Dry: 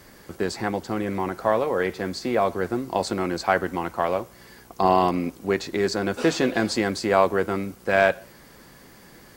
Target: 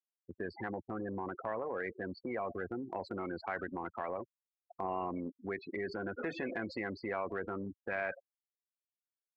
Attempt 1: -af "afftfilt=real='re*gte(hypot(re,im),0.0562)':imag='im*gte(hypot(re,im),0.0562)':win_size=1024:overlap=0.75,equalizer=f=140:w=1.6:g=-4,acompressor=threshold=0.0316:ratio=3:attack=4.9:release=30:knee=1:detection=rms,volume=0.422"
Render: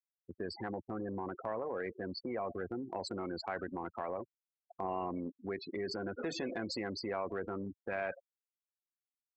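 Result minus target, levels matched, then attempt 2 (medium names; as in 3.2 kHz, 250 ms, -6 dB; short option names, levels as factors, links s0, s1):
2 kHz band -3.5 dB
-af "afftfilt=real='re*gte(hypot(re,im),0.0562)':imag='im*gte(hypot(re,im),0.0562)':win_size=1024:overlap=0.75,lowpass=f=2100:t=q:w=2.1,equalizer=f=140:w=1.6:g=-4,acompressor=threshold=0.0316:ratio=3:attack=4.9:release=30:knee=1:detection=rms,volume=0.422"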